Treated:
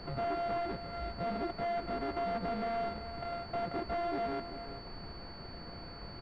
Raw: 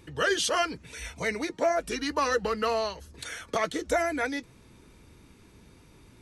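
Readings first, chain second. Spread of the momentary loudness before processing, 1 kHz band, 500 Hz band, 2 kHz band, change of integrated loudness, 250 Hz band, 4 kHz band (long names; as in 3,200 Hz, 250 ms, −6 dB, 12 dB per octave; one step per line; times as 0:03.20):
13 LU, −5.0 dB, −6.5 dB, −14.5 dB, −9.0 dB, −5.5 dB, −11.5 dB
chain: samples sorted by size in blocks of 64 samples
comb filter 5.6 ms, depth 31%
in parallel at +1.5 dB: downward compressor, threshold −34 dBFS, peak gain reduction 14 dB
on the sum: background noise pink −42 dBFS
gain into a clipping stage and back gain 27 dB
high-frequency loss of the air 160 metres
on a send: single-tap delay 388 ms −11 dB
on the sum: switching amplifier with a slow clock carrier 4,500 Hz
level −4 dB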